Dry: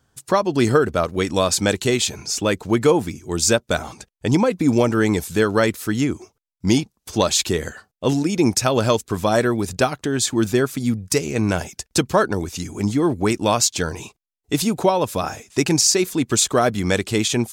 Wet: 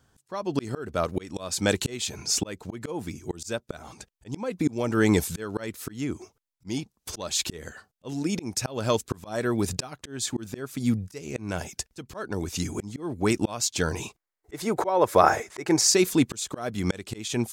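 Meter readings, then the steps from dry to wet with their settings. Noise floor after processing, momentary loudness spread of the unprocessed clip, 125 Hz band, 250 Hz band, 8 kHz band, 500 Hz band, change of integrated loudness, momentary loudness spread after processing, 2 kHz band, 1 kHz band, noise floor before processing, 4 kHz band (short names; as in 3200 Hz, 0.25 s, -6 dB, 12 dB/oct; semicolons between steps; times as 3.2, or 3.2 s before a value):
-77 dBFS, 8 LU, -8.5 dB, -8.0 dB, -7.0 dB, -8.5 dB, -7.5 dB, 15 LU, -8.0 dB, -6.0 dB, -74 dBFS, -8.0 dB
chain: auto swell 0.501 s; spectral gain 14.17–15.89, 310–2300 Hz +10 dB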